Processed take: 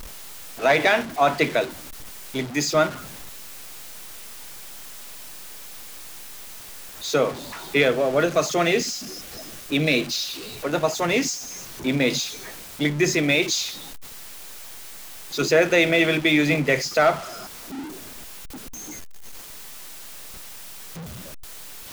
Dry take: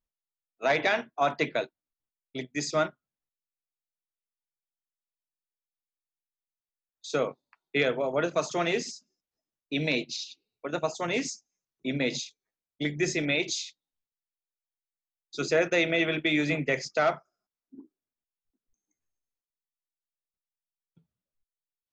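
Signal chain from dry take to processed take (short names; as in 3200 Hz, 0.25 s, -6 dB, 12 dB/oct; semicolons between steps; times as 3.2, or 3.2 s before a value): zero-crossing step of -35 dBFS; 7.91–10.29 notch 930 Hz, Q 7.3; gain +6 dB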